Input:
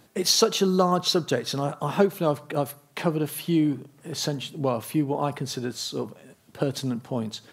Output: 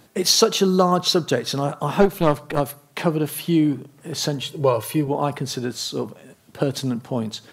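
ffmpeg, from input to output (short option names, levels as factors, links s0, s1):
-filter_complex "[0:a]asplit=3[s0][s1][s2];[s0]afade=t=out:st=2.01:d=0.02[s3];[s1]aeval=exprs='0.473*(cos(1*acos(clip(val(0)/0.473,-1,1)))-cos(1*PI/2))+0.0668*(cos(6*acos(clip(val(0)/0.473,-1,1)))-cos(6*PI/2))':c=same,afade=t=in:st=2.01:d=0.02,afade=t=out:st=2.59:d=0.02[s4];[s2]afade=t=in:st=2.59:d=0.02[s5];[s3][s4][s5]amix=inputs=3:normalize=0,asettb=1/sr,asplit=3[s6][s7][s8];[s6]atrim=end=4.424[s9];[s7]atrim=start=4.42:end=5.08,asetpts=PTS-STARTPTS,afade=t=in:d=0.004:c=qsin,afade=t=out:st=0.656:d=0.004:c=qsin,aecho=1:1:2.1:0.86,atrim=end_sample=29106[s10];[s8]atrim=start=5.076[s11];[s9][s10]acrossfade=d=0.004:c1=hsin:c2=qsin[s12];[s12][s11]acrossfade=d=0.004:c1=qsin:c2=hsin,volume=1.58"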